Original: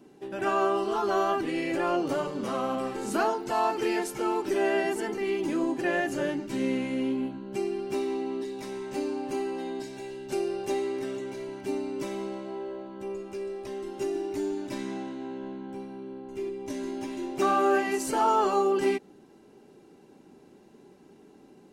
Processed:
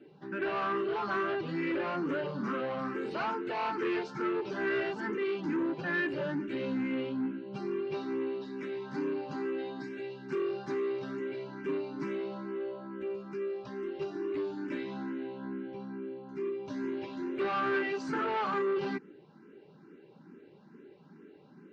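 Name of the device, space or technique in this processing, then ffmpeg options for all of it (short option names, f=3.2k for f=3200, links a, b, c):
barber-pole phaser into a guitar amplifier: -filter_complex "[0:a]asplit=2[a][b];[b]afreqshift=2.3[c];[a][c]amix=inputs=2:normalize=1,asoftclip=type=tanh:threshold=-29dB,highpass=92,equalizer=f=94:t=q:w=4:g=-7,equalizer=f=160:t=q:w=4:g=7,equalizer=f=720:t=q:w=4:g=-9,equalizer=f=1.5k:t=q:w=4:g=6,equalizer=f=3.3k:t=q:w=4:g=-4,lowpass=f=4.1k:w=0.5412,lowpass=f=4.1k:w=1.3066,volume=2dB"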